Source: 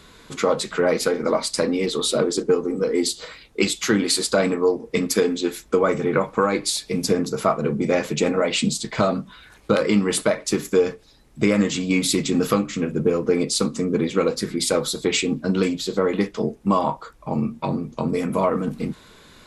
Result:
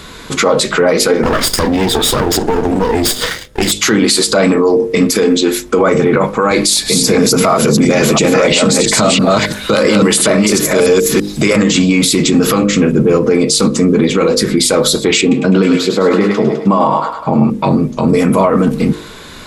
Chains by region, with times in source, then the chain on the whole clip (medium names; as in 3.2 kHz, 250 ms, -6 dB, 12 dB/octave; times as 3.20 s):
1.23–3.72 s: comb filter that takes the minimum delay 0.58 ms + waveshaping leveller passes 2 + compression 12:1, threshold -25 dBFS
6.51–11.56 s: chunks repeated in reverse 335 ms, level -2.5 dB + treble shelf 4.2 kHz +6.5 dB + three bands compressed up and down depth 40%
15.21–17.50 s: high-pass 110 Hz + treble shelf 3.2 kHz -10 dB + thinning echo 103 ms, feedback 58%, high-pass 710 Hz, level -5 dB
whole clip: de-hum 50.72 Hz, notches 12; loudness maximiser +17 dB; trim -1 dB